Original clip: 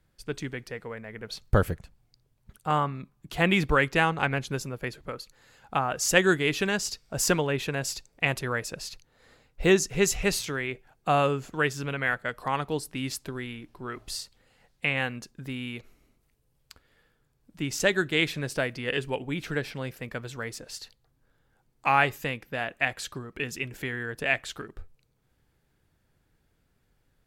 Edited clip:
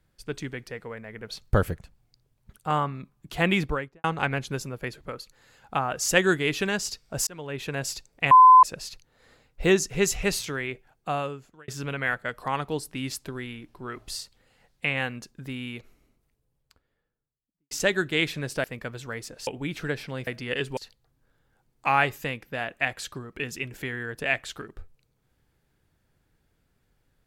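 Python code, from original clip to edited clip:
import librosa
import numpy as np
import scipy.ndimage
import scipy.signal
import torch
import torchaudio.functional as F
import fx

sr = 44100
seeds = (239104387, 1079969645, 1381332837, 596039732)

y = fx.studio_fade_out(x, sr, start_s=3.51, length_s=0.53)
y = fx.studio_fade_out(y, sr, start_s=15.66, length_s=2.05)
y = fx.edit(y, sr, fx.fade_in_span(start_s=7.27, length_s=0.52),
    fx.bleep(start_s=8.31, length_s=0.32, hz=1020.0, db=-8.5),
    fx.fade_out_span(start_s=10.68, length_s=1.0),
    fx.swap(start_s=18.64, length_s=0.5, other_s=19.94, other_length_s=0.83), tone=tone)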